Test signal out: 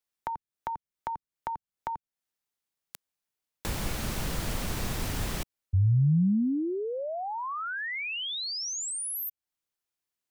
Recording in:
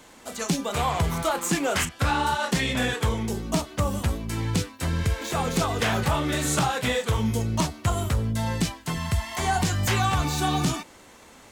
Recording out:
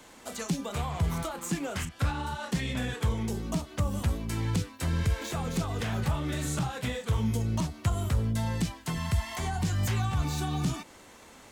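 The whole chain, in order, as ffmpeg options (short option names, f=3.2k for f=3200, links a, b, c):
-filter_complex "[0:a]acrossover=split=220[a][b];[b]acompressor=threshold=-32dB:ratio=6[c];[a][c]amix=inputs=2:normalize=0,volume=-2dB"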